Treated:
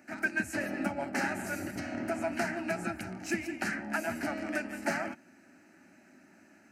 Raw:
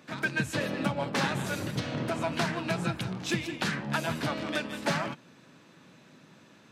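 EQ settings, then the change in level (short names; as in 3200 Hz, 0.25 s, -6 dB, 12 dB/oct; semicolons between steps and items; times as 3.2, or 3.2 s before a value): fixed phaser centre 710 Hz, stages 8; 0.0 dB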